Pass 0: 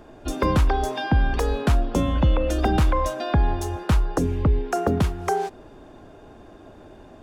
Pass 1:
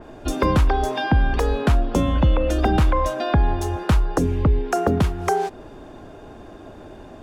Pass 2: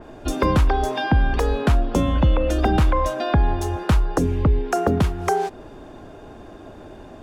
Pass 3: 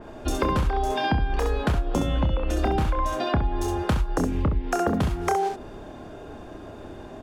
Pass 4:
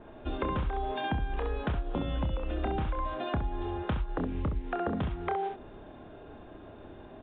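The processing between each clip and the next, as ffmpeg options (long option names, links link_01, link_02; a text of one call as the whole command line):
ffmpeg -i in.wav -filter_complex "[0:a]asplit=2[link_01][link_02];[link_02]acompressor=threshold=-27dB:ratio=6,volume=-2dB[link_03];[link_01][link_03]amix=inputs=2:normalize=0,adynamicequalizer=threshold=0.00891:dfrequency=4100:dqfactor=0.7:tfrequency=4100:tqfactor=0.7:attack=5:release=100:ratio=0.375:range=2:mode=cutabove:tftype=highshelf" out.wav
ffmpeg -i in.wav -af anull out.wav
ffmpeg -i in.wav -af "aecho=1:1:28|66:0.501|0.562,acompressor=threshold=-18dB:ratio=6,volume=-1.5dB" out.wav
ffmpeg -i in.wav -af "volume=-8dB" -ar 8000 -c:a pcm_mulaw out.wav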